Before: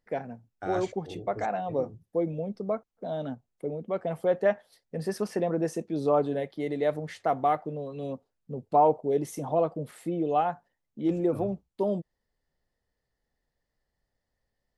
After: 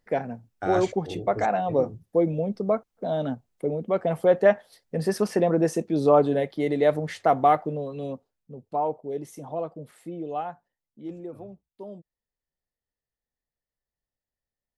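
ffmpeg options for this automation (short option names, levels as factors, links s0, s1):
-af "volume=2,afade=t=out:st=7.59:d=0.94:silence=0.266073,afade=t=out:st=10.39:d=0.94:silence=0.446684"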